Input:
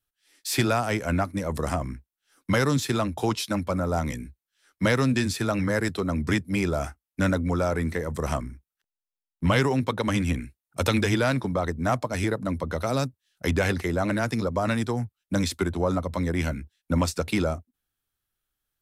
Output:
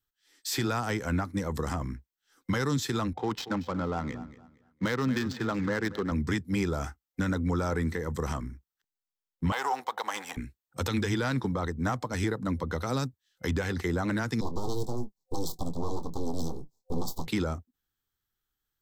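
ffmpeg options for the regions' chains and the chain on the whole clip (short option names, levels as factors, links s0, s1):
-filter_complex "[0:a]asettb=1/sr,asplit=3[s0][s1][s2];[s0]atrim=end=3.134[s3];[s1]atrim=start=3.13:end=6.12,asetpts=PTS-STARTPTS,afade=t=in:d=0.004:c=qsin,afade=t=out:st=2.986:d=0.004:c=qsin,highpass=f=170:p=1,adynamicsmooth=sensitivity=4.5:basefreq=970,aecho=1:1:232|464|696:0.15|0.0389|0.0101,atrim=end_sample=131859[s4];[s2]atrim=start=6.116[s5];[s3][s4]acrossfade=d=0.004:c1=hsin:c2=qsin[s6];[s6][s5]acrossfade=d=0.004:c1=qsin:c2=hsin,asettb=1/sr,asplit=3[s7][s8][s9];[s7]atrim=end=9.524[s10];[s8]atrim=start=9.52:end=10.37,asetpts=PTS-STARTPTS,afade=t=in:d=0.004:c=qsin,afade=t=out:st=0.846:d=0.004:c=qsin,aeval=exprs='if(lt(val(0),0),0.447*val(0),val(0))':c=same,highpass=f=770:t=q:w=3.4,highshelf=f=11000:g=10[s11];[s9]atrim=start=10.366[s12];[s10][s11]acrossfade=d=0.004:c1=hsin:c2=qsin[s13];[s13][s12]acrossfade=d=0.004:c1=qsin:c2=hsin,asettb=1/sr,asplit=3[s14][s15][s16];[s14]atrim=end=14.414[s17];[s15]atrim=start=14.41:end=17.27,asetpts=PTS-STARTPTS,afade=t=in:d=0.004:c=qsin,afade=t=out:st=2.856:d=0.004:c=qsin,aeval=exprs='abs(val(0))':c=same,asuperstop=centerf=2000:order=8:qfactor=0.69,asplit=2[s18][s19];[s19]adelay=24,volume=0.251[s20];[s18][s20]amix=inputs=2:normalize=0,atrim=end_sample=126126[s21];[s16]atrim=start=17.266[s22];[s17][s21]acrossfade=d=0.004:c1=hsin:c2=qsin[s23];[s23][s22]acrossfade=d=0.004:c1=qsin:c2=hsin,superequalizer=8b=0.447:12b=0.631:16b=0.398,alimiter=limit=0.126:level=0:latency=1:release=92,volume=0.841"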